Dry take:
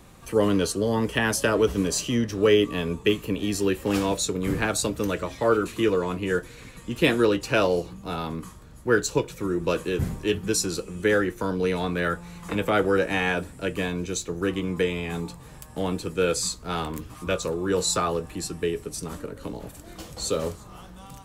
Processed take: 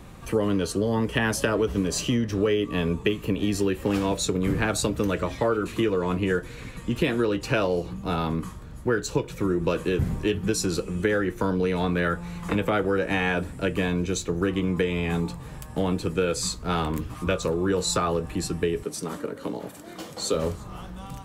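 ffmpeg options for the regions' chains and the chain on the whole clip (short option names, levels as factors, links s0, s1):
-filter_complex "[0:a]asettb=1/sr,asplit=3[s0][s1][s2];[s0]atrim=end=18.834[s3];[s1]atrim=start=18.83:end=20.34,asetpts=PTS-STARTPTS,afade=t=in:d=0.004:c=qsin,afade=t=out:st=1.506:d=0.004:c=qsin,highpass=220,bandreject=f=2600:w=19[s4];[s2]atrim=start=20.336[s5];[s3][s4]acrossfade=d=0.004:c1=hsin:c2=qsin[s6];[s6][s5]acrossfade=d=0.004:c1=qsin:c2=hsin,bass=f=250:g=3,treble=f=4000:g=-5,acompressor=threshold=0.0631:ratio=6,volume=1.58"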